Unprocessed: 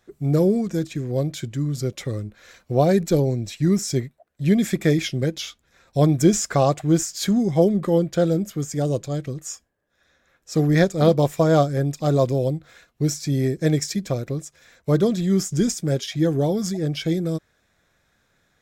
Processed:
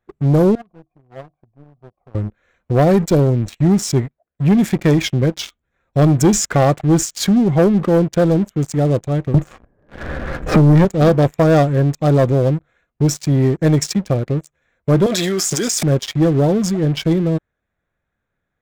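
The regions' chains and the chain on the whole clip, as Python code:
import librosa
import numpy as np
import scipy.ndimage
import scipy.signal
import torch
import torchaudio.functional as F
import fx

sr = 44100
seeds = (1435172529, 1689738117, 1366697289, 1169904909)

y = fx.chain(x, sr, fx.formant_cascade(vowel='a'),
    fx.tilt_eq(slope=-3.0), at=(0.55, 2.15))
y = fx.chain(y, sr, fx.tilt_eq(slope=-3.0),
    fx.band_squash(depth_pct=100), at=(9.34, 10.85))
y = fx.chain(y, sr, fx.highpass(hz=610.0, slope=12),
    fx.env_flatten(amount_pct=100), at=(15.06, 15.83))
y = fx.wiener(y, sr, points=9)
y = fx.low_shelf(y, sr, hz=89.0, db=5.5)
y = fx.leveller(y, sr, passes=3)
y = F.gain(torch.from_numpy(y), -4.5).numpy()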